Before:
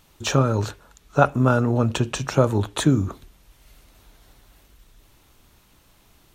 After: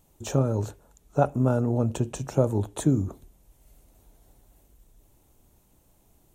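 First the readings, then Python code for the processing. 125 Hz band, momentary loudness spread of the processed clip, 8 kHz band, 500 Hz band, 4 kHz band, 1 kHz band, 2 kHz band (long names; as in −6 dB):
−4.0 dB, 8 LU, −6.5 dB, −4.0 dB, −14.5 dB, −8.0 dB, −15.0 dB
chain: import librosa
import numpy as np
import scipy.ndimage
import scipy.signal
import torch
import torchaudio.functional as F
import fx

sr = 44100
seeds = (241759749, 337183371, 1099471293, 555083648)

y = fx.band_shelf(x, sr, hz=2400.0, db=-11.0, octaves=2.6)
y = y * librosa.db_to_amplitude(-4.0)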